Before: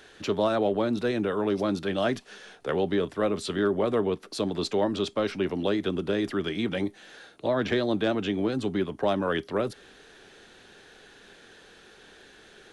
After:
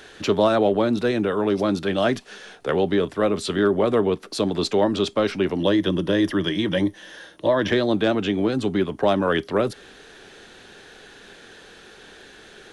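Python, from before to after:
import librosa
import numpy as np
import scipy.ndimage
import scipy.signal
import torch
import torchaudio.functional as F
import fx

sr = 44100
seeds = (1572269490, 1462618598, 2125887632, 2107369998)

y = fx.ripple_eq(x, sr, per_octave=1.2, db=8, at=(5.59, 7.72))
y = fx.rider(y, sr, range_db=10, speed_s=2.0)
y = y * 10.0 ** (5.5 / 20.0)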